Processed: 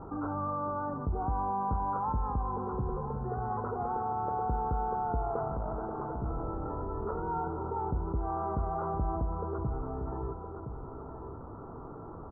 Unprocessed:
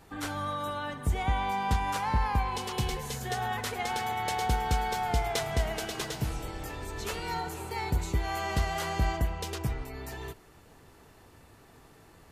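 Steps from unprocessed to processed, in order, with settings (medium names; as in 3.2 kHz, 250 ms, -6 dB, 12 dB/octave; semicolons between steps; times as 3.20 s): 2.12–3.50 s: peaking EQ 890 Hz -5.5 dB 1 oct; 5.48–6.24 s: valve stage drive 31 dB, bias 0.7; rippled Chebyshev low-pass 1.4 kHz, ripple 3 dB; delay 1016 ms -15.5 dB; level flattener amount 50%; trim -3 dB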